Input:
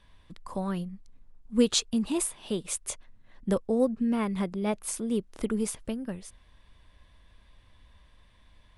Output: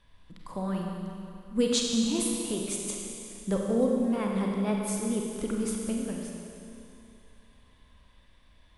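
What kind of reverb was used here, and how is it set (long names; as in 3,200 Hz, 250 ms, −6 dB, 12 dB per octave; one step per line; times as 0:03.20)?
four-comb reverb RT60 2.7 s, combs from 31 ms, DRR −0.5 dB
level −3 dB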